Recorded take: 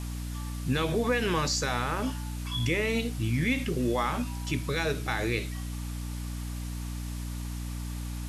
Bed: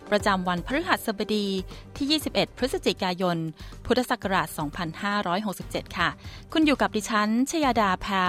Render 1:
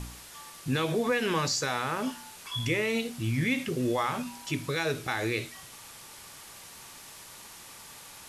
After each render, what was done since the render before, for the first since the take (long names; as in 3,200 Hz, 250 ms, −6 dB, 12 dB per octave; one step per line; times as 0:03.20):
hum removal 60 Hz, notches 5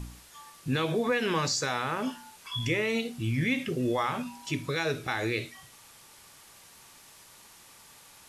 noise reduction from a noise print 6 dB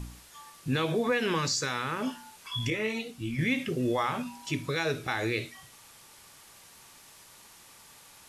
0:01.35–0:02.01: parametric band 700 Hz −9.5 dB 0.55 octaves
0:02.70–0:03.39: string-ensemble chorus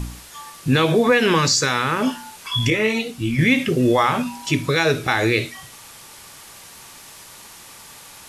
level +11.5 dB